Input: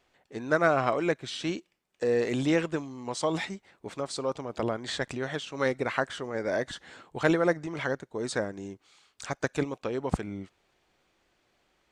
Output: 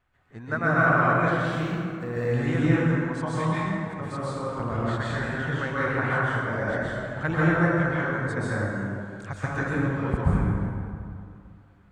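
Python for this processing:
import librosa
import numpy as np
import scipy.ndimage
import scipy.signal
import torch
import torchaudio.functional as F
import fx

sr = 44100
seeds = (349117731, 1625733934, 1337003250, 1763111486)

y = fx.quant_dither(x, sr, seeds[0], bits=10, dither='none', at=(1.36, 2.15))
y = fx.curve_eq(y, sr, hz=(120.0, 420.0, 1500.0, 2200.0, 5600.0, 10000.0), db=(0, -17, -5, -12, -22, -15))
y = fx.rev_plate(y, sr, seeds[1], rt60_s=2.4, hf_ratio=0.5, predelay_ms=115, drr_db=-8.5)
y = y * 10.0 ** (5.0 / 20.0)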